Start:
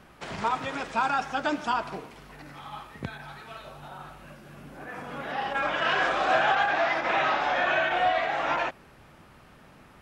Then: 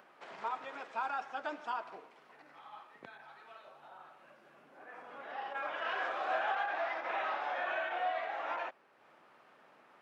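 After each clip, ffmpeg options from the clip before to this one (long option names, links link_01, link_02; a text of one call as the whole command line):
ffmpeg -i in.wav -af "lowpass=frequency=1900:poles=1,acompressor=mode=upward:threshold=-42dB:ratio=2.5,highpass=470,volume=-9dB" out.wav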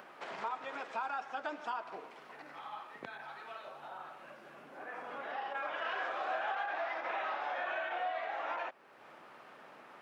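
ffmpeg -i in.wav -af "acompressor=threshold=-49dB:ratio=2,volume=7.5dB" out.wav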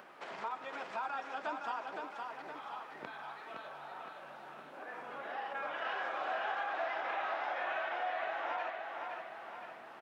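ffmpeg -i in.wav -af "aecho=1:1:515|1030|1545|2060|2575|3090|3605:0.596|0.316|0.167|0.0887|0.047|0.0249|0.0132,volume=-1.5dB" out.wav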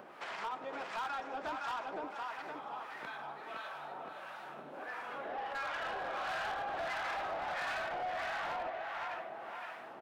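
ffmpeg -i in.wav -filter_complex "[0:a]asoftclip=type=hard:threshold=-33dB,acrossover=split=830[link_01][link_02];[link_01]aeval=exprs='val(0)*(1-0.7/2+0.7/2*cos(2*PI*1.5*n/s))':channel_layout=same[link_03];[link_02]aeval=exprs='val(0)*(1-0.7/2-0.7/2*cos(2*PI*1.5*n/s))':channel_layout=same[link_04];[link_03][link_04]amix=inputs=2:normalize=0,asoftclip=type=tanh:threshold=-39.5dB,volume=6.5dB" out.wav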